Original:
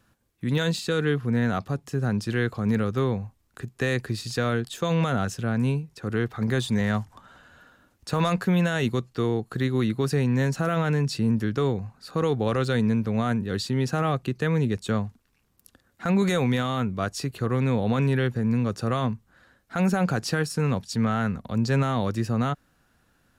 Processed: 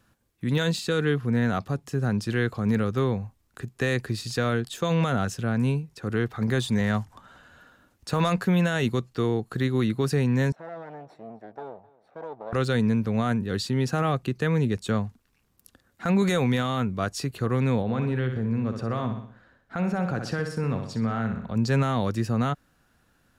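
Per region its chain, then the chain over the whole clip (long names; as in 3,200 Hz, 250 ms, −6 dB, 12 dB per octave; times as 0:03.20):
0:10.52–0:12.53: lower of the sound and its delayed copy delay 0.52 ms + resonant band-pass 720 Hz, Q 4.1 + single-tap delay 261 ms −21.5 dB
0:17.82–0:21.56: low-pass filter 2,100 Hz 6 dB per octave + repeating echo 62 ms, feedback 45%, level −8 dB + downward compressor 1.5 to 1, threshold −28 dBFS
whole clip: no processing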